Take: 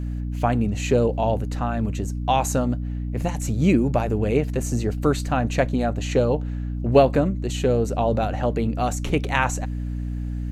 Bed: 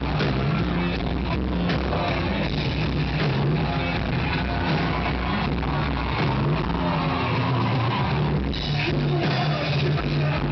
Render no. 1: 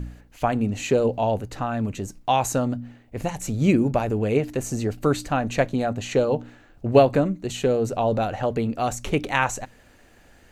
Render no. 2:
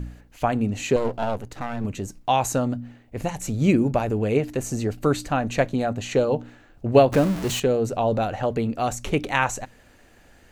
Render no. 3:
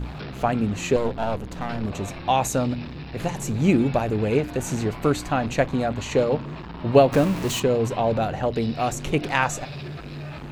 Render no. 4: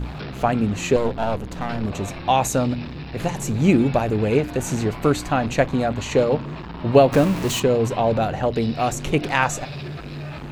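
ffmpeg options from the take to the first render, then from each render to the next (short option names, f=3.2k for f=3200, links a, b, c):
-af "bandreject=f=60:t=h:w=4,bandreject=f=120:t=h:w=4,bandreject=f=180:t=h:w=4,bandreject=f=240:t=h:w=4,bandreject=f=300:t=h:w=4"
-filter_complex "[0:a]asettb=1/sr,asplit=3[a][b][c];[a]atrim=end=0.964[d];[b]atrim=start=0.96:end=1.85,asetpts=PTS-STARTPTS,afade=t=in:d=0.004:c=qsin,afade=t=out:st=0.886:d=0.004:c=qsin,aeval=exprs='if(lt(val(0),0),0.251*val(0),val(0))':c=same[e];[c]atrim=start=1.846[f];[d][e]acrossfade=d=0.004:c1=hsin:c2=qsin[g];[g][f]acrossfade=d=0.004:c1=qsin:c2=hsin,asettb=1/sr,asplit=3[h][i][j];[h]atrim=end=7.124[k];[i]atrim=start=7.12:end=7.6,asetpts=PTS-STARTPTS,afade=t=in:d=0.004:c=qsin,afade=t=out:st=0.476:d=0.004:c=qsin,aeval=exprs='val(0)+0.5*0.0531*sgn(val(0))':c=same[l];[j]atrim=start=7.596[m];[k][l]acrossfade=d=0.004:c1=hsin:c2=qsin[n];[n][m]acrossfade=d=0.004:c1=qsin:c2=hsin"
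-filter_complex "[1:a]volume=-12.5dB[a];[0:a][a]amix=inputs=2:normalize=0"
-af "volume=2.5dB,alimiter=limit=-3dB:level=0:latency=1"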